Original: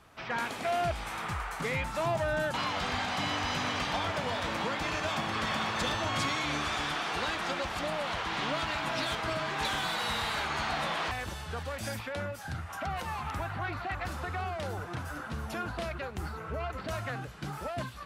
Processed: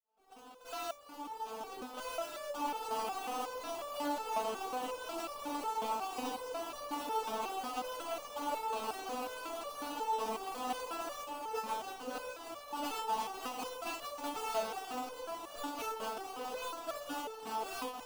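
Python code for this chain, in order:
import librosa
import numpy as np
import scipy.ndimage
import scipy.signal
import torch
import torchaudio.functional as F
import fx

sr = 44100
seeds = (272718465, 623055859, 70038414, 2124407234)

y = fx.fade_in_head(x, sr, length_s=4.04)
y = scipy.signal.sosfilt(scipy.signal.butter(2, 3200.0, 'lowpass', fs=sr, output='sos'), y)
y = fx.rider(y, sr, range_db=4, speed_s=0.5)
y = fx.vowel_filter(y, sr, vowel='a')
y = fx.echo_diffused(y, sr, ms=1433, feedback_pct=71, wet_db=-14.0)
y = fx.sample_hold(y, sr, seeds[0], rate_hz=2000.0, jitter_pct=20)
y = 10.0 ** (-36.5 / 20.0) * np.tanh(y / 10.0 ** (-36.5 / 20.0))
y = fx.small_body(y, sr, hz=(280.0, 460.0, 890.0), ring_ms=45, db=12)
y = fx.resonator_held(y, sr, hz=5.5, low_hz=220.0, high_hz=580.0)
y = F.gain(torch.from_numpy(y), 17.5).numpy()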